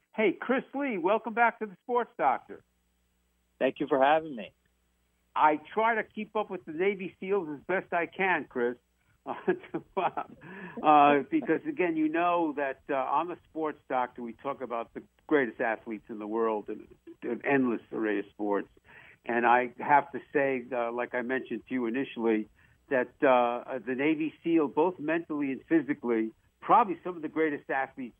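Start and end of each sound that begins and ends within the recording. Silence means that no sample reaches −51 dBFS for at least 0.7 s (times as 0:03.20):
0:03.60–0:04.49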